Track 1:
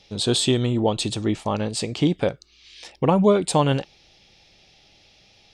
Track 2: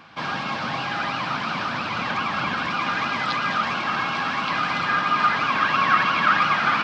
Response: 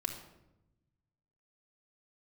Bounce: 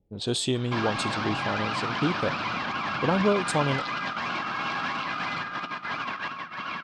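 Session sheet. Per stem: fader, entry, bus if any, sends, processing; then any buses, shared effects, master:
−6.5 dB, 0.00 s, no send, low-pass that shuts in the quiet parts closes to 310 Hz, open at −19.5 dBFS
−4.0 dB, 0.55 s, send −8.5 dB, compressor whose output falls as the input rises −26 dBFS, ratio −0.5; brickwall limiter −20 dBFS, peak gain reduction 8.5 dB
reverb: on, RT60 0.90 s, pre-delay 3 ms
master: no processing

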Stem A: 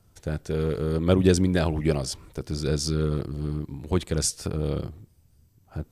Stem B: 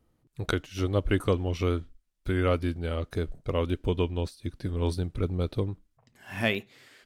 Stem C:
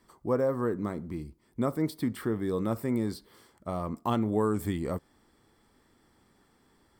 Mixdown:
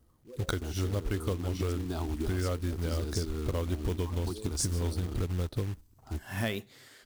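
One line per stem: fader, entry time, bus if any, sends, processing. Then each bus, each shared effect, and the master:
−1.0 dB, 0.35 s, bus A, no send, high-shelf EQ 5,400 Hz −8.5 dB; downward compressor 6 to 1, threshold −25 dBFS, peak gain reduction 11.5 dB; phaser with its sweep stopped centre 530 Hz, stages 6
0.0 dB, 0.00 s, bus A, no send, parametric band 2,500 Hz −7 dB 0.44 octaves
−16.5 dB, 0.00 s, no bus, no send, spectral envelope exaggerated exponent 3; flanger 0.63 Hz, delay 6.1 ms, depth 7.3 ms, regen −35%
bus A: 0.0 dB, parametric band 61 Hz +6.5 dB 2 octaves; downward compressor 5 to 1, threshold −28 dBFS, peak gain reduction 11 dB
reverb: not used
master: high-shelf EQ 5,100 Hz +6.5 dB; floating-point word with a short mantissa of 2 bits

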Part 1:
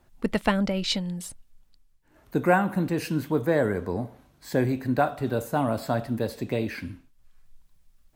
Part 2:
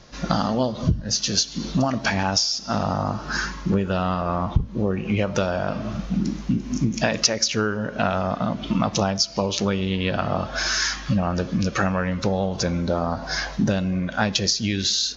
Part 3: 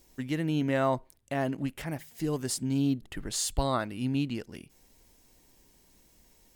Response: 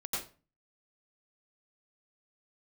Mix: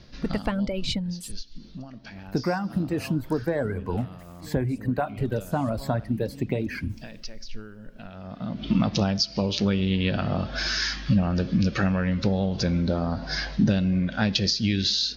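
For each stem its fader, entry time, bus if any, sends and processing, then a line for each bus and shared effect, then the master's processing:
−4.0 dB, 0.00 s, bus A, no send, reverb reduction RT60 1.9 s; automatic gain control gain up to 9.5 dB
+1.0 dB, 0.00 s, no bus, no send, drawn EQ curve 220 Hz 0 dB, 1,100 Hz −10 dB, 1,600 Hz −4 dB, 4,800 Hz +2 dB, 6,800 Hz −10 dB; automatic ducking −18 dB, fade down 0.55 s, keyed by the first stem
−17.5 dB, 2.20 s, bus A, no send, level that may fall only so fast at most 26 dB per second
bus A: 0.0 dB, low-shelf EQ 120 Hz +11.5 dB; downward compressor 6 to 1, threshold −22 dBFS, peak gain reduction 11 dB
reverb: not used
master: high-shelf EQ 3,900 Hz −6 dB

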